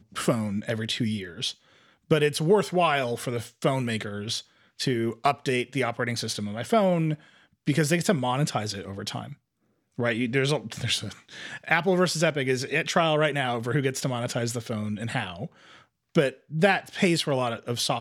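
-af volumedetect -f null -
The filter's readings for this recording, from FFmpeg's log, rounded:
mean_volume: -26.7 dB
max_volume: -7.2 dB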